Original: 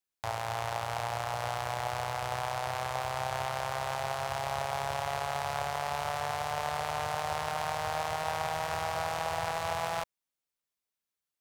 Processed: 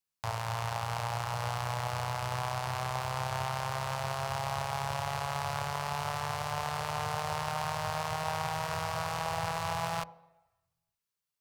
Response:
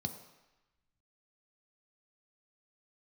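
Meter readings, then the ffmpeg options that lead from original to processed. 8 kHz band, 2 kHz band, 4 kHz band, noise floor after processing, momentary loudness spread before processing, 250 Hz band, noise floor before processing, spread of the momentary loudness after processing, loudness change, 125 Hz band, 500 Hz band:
0.0 dB, -1.0 dB, 0.0 dB, under -85 dBFS, 1 LU, +4.0 dB, under -85 dBFS, 1 LU, -0.5 dB, +5.0 dB, -3.0 dB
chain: -filter_complex "[0:a]asplit=2[a][b];[1:a]atrim=start_sample=2205,lowpass=3.4k[c];[b][c]afir=irnorm=-1:irlink=0,volume=-11.5dB[d];[a][d]amix=inputs=2:normalize=0"

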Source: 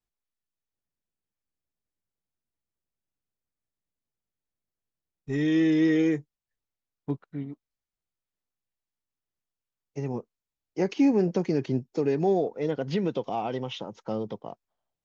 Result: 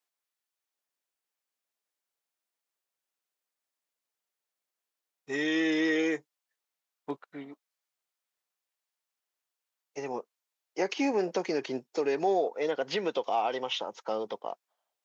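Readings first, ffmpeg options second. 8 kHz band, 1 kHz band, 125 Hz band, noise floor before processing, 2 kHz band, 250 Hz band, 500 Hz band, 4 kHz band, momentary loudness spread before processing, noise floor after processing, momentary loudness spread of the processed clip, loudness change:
n/a, +3.0 dB, -18.0 dB, under -85 dBFS, +4.5 dB, -7.5 dB, -2.0 dB, +5.0 dB, 16 LU, under -85 dBFS, 15 LU, -3.5 dB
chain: -filter_complex "[0:a]highpass=590,asplit=2[a][b];[b]alimiter=level_in=2.5dB:limit=-24dB:level=0:latency=1:release=146,volume=-2.5dB,volume=-0.5dB[c];[a][c]amix=inputs=2:normalize=0"

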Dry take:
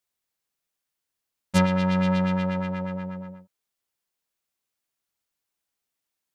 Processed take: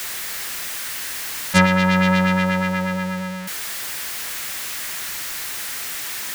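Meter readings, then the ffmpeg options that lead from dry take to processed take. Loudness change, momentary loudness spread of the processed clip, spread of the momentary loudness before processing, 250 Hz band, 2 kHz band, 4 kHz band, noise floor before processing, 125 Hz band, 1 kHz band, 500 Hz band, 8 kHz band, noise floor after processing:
+3.0 dB, 9 LU, 14 LU, +5.0 dB, +14.5 dB, +14.0 dB, -84 dBFS, +4.5 dB, +9.0 dB, +5.5 dB, +21.0 dB, -29 dBFS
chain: -filter_complex "[0:a]aeval=exprs='val(0)+0.5*0.0299*sgn(val(0))':c=same,equalizer=f=1.8k:w=1.8:g=6,acrossover=split=200|1000[a][b][c];[c]acontrast=27[d];[a][b][d]amix=inputs=3:normalize=0,volume=3dB"

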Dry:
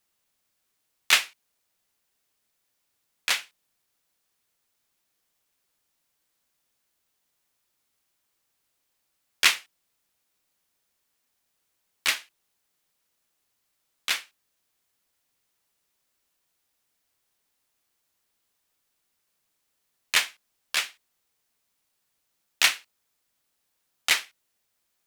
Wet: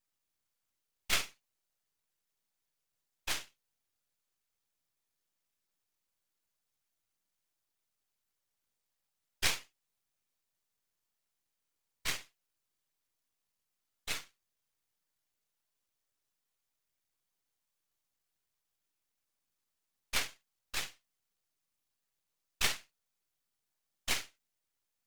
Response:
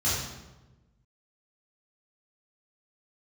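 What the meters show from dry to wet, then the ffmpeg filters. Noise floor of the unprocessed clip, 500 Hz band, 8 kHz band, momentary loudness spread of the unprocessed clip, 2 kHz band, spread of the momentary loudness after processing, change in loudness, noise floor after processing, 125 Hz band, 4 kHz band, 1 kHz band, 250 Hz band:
-77 dBFS, -4.0 dB, -9.0 dB, 13 LU, -12.5 dB, 12 LU, -11.5 dB, under -85 dBFS, n/a, -11.5 dB, -9.5 dB, +0.5 dB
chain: -filter_complex "[0:a]asplit=2[a][b];[1:a]atrim=start_sample=2205,atrim=end_sample=3087[c];[b][c]afir=irnorm=-1:irlink=0,volume=-16dB[d];[a][d]amix=inputs=2:normalize=0,afftfilt=real='hypot(re,im)*cos(2*PI*random(0))':imag='hypot(re,im)*sin(2*PI*random(1))':win_size=512:overlap=0.75,aeval=exprs='max(val(0),0)':c=same"

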